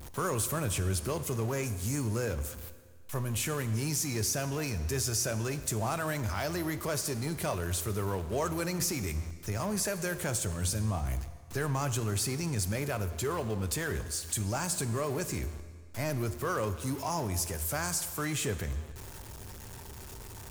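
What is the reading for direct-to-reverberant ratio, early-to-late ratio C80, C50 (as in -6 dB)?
11.0 dB, 13.5 dB, 12.5 dB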